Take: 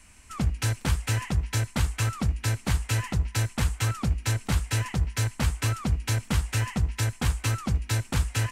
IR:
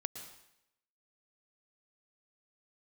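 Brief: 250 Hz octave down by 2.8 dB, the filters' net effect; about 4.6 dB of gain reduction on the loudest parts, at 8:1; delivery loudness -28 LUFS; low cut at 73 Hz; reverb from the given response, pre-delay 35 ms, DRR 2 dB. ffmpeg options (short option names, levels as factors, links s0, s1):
-filter_complex "[0:a]highpass=73,equalizer=f=250:t=o:g=-4,acompressor=threshold=0.0447:ratio=8,asplit=2[s0][s1];[1:a]atrim=start_sample=2205,adelay=35[s2];[s1][s2]afir=irnorm=-1:irlink=0,volume=0.891[s3];[s0][s3]amix=inputs=2:normalize=0,volume=1.26"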